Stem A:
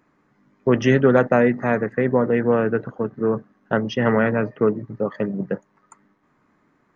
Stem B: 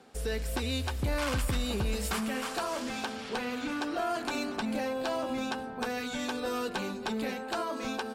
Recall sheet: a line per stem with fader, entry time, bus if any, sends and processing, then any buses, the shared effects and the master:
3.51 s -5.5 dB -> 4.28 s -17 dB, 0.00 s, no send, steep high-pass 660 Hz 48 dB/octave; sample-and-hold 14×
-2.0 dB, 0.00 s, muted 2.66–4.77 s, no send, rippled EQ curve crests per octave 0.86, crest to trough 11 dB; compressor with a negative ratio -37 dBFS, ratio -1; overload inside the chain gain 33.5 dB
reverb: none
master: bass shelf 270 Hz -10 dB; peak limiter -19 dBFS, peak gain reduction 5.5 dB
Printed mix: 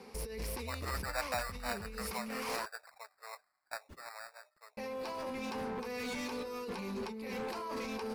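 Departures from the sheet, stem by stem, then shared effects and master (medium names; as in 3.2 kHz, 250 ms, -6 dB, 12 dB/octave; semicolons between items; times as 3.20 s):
stem A -5.5 dB -> -13.5 dB; master: missing bass shelf 270 Hz -10 dB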